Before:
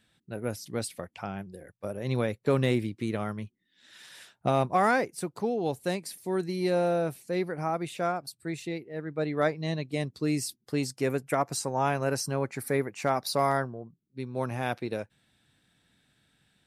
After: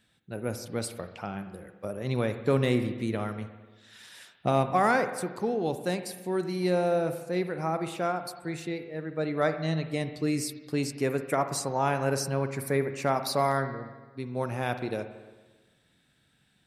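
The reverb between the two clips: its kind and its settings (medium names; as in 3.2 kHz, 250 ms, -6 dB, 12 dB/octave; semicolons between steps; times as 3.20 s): spring tank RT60 1.3 s, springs 44/56 ms, chirp 40 ms, DRR 9 dB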